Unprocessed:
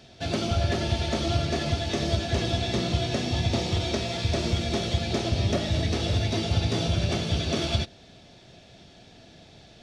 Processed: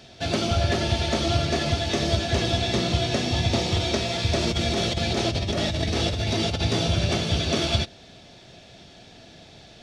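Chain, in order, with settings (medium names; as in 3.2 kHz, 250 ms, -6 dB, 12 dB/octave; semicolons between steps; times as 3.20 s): 4.41–6.64 s: compressor with a negative ratio -27 dBFS, ratio -1; bass shelf 440 Hz -3 dB; trim +4.5 dB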